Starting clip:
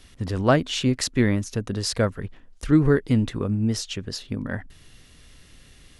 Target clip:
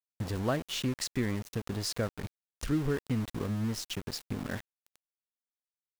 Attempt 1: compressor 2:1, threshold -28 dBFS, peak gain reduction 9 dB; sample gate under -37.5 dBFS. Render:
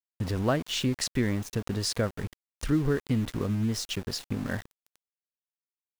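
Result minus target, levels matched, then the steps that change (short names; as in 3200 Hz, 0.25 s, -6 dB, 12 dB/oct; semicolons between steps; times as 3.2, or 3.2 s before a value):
compressor: peak gain reduction -4 dB
change: compressor 2:1, threshold -36.5 dBFS, peak gain reduction 13 dB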